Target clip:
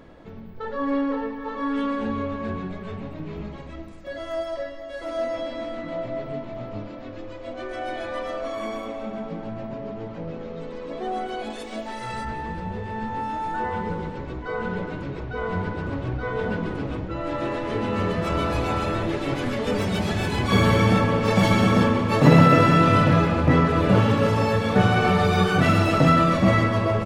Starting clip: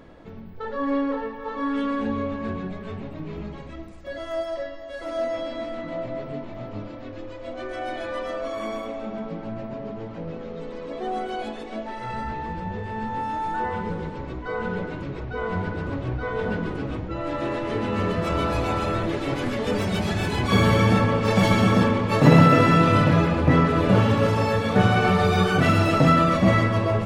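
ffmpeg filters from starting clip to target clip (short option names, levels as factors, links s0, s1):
-filter_complex "[0:a]asettb=1/sr,asplit=3[s0][s1][s2];[s0]atrim=end=11.504[s3];[s1]atrim=start=11.5:end=12.25,asetpts=PTS-STARTPTS,afade=t=in:d=0.004:c=qsin,afade=t=out:st=0.746:d=0.004:c=qsin,aemphasis=mode=production:type=75fm[s4];[s2]atrim=start=12.246[s5];[s3][s4]acrossfade=d=0.004:c1=hsin:c2=qsin[s6];[s6][s5]acrossfade=d=0.004:c1=qsin:c2=hsin,aecho=1:1:184|368|552|736|920|1104:0.178|0.105|0.0619|0.0365|0.0215|0.0127"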